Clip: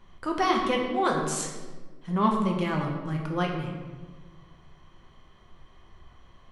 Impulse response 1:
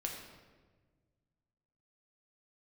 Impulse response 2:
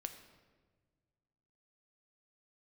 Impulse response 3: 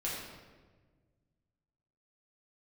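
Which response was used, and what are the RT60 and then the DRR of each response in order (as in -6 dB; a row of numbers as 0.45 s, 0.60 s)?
1; 1.4 s, 1.5 s, 1.4 s; 0.0 dB, 6.5 dB, -6.5 dB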